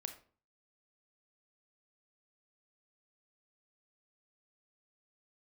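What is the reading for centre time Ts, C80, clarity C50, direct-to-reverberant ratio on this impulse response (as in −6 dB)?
11 ms, 15.0 dB, 10.5 dB, 6.5 dB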